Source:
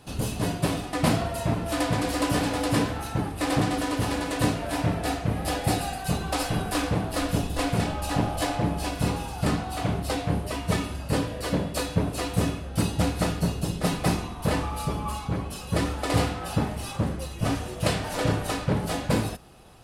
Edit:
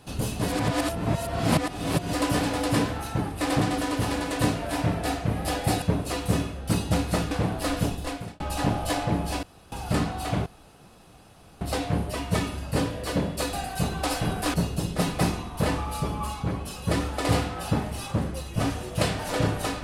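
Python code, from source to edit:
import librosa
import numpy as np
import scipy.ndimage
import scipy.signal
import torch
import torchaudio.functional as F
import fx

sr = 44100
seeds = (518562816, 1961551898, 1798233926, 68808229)

y = fx.edit(x, sr, fx.reverse_span(start_s=0.48, length_s=1.65),
    fx.swap(start_s=5.82, length_s=1.01, other_s=11.9, other_length_s=1.49),
    fx.fade_out_span(start_s=7.34, length_s=0.58),
    fx.room_tone_fill(start_s=8.95, length_s=0.29),
    fx.insert_room_tone(at_s=9.98, length_s=1.15), tone=tone)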